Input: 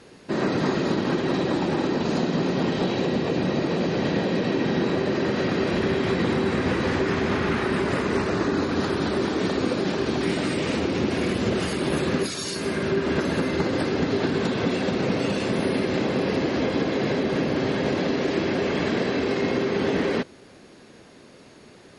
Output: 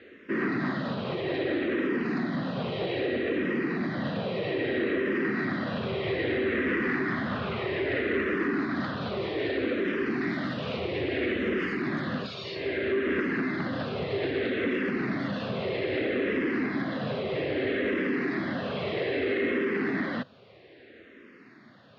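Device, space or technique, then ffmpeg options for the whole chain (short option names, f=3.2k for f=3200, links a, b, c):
barber-pole phaser into a guitar amplifier: -filter_complex "[0:a]asplit=2[a][b];[b]afreqshift=-0.62[c];[a][c]amix=inputs=2:normalize=1,asoftclip=type=tanh:threshold=-20dB,highpass=100,equalizer=f=170:t=q:w=4:g=-6,equalizer=f=880:t=q:w=4:g=-9,equalizer=f=1.9k:t=q:w=4:g=7,lowpass=f=3.6k:w=0.5412,lowpass=f=3.6k:w=1.3066"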